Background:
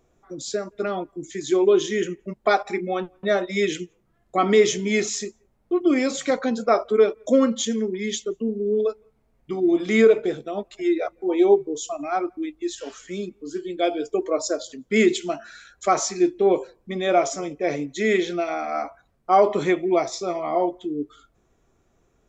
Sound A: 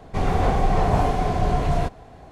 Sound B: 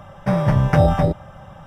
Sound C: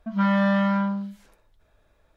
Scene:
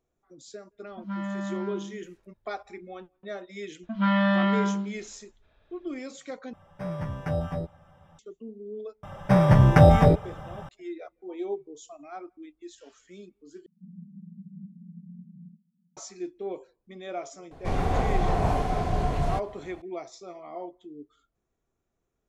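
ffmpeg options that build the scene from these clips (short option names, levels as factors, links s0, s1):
-filter_complex "[3:a]asplit=2[s0][s1];[2:a]asplit=2[s2][s3];[1:a]asplit=2[s4][s5];[0:a]volume=0.158[s6];[s0]equalizer=f=81:w=1:g=12.5[s7];[s1]lowpass=f=3500:t=q:w=1.8[s8];[s2]asplit=2[s9][s10];[s10]adelay=12,volume=0.562[s11];[s9][s11]amix=inputs=2:normalize=0[s12];[s4]asuperpass=centerf=190:order=8:qfactor=3.3[s13];[s6]asplit=3[s14][s15][s16];[s14]atrim=end=6.534[s17];[s12]atrim=end=1.66,asetpts=PTS-STARTPTS,volume=0.15[s18];[s15]atrim=start=8.186:end=13.664[s19];[s13]atrim=end=2.31,asetpts=PTS-STARTPTS,volume=0.251[s20];[s16]atrim=start=15.966[s21];[s7]atrim=end=2.16,asetpts=PTS-STARTPTS,volume=0.2,afade=t=in:d=0.004:c=hsin,afade=t=out:st=2.156:d=0.004:c=hsin,adelay=910[s22];[s8]atrim=end=2.16,asetpts=PTS-STARTPTS,volume=0.794,afade=t=in:d=0.004:c=hsin,afade=t=out:st=2.156:d=0.004:c=hsin,adelay=3830[s23];[s3]atrim=end=1.66,asetpts=PTS-STARTPTS,afade=t=in:d=0.004:c=hsin,afade=t=out:st=1.656:d=0.004:c=hsin,adelay=9030[s24];[s5]atrim=end=2.31,asetpts=PTS-STARTPTS,volume=0.562,afade=t=in:d=0.004:c=hsin,afade=t=out:st=2.306:d=0.004:c=hsin,adelay=17510[s25];[s17][s18]acrossfade=d=0.004:c1=hsin:c2=hsin[s26];[s26][s19]acrossfade=d=0.004:c1=hsin:c2=hsin[s27];[s27][s20]acrossfade=d=0.004:c1=hsin:c2=hsin[s28];[s28][s21]acrossfade=d=0.004:c1=hsin:c2=hsin[s29];[s29][s22][s23][s24][s25]amix=inputs=5:normalize=0"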